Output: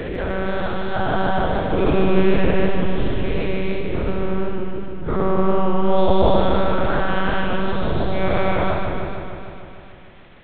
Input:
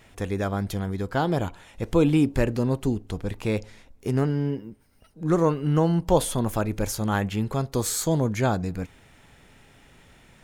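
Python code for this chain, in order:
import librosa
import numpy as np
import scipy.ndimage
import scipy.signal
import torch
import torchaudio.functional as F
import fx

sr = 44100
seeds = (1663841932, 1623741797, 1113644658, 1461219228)

y = fx.spec_dilate(x, sr, span_ms=480)
y = fx.lpc_monotone(y, sr, seeds[0], pitch_hz=190.0, order=8)
y = fx.echo_warbled(y, sr, ms=151, feedback_pct=71, rate_hz=2.8, cents=77, wet_db=-5.5)
y = F.gain(torch.from_numpy(y), -3.0).numpy()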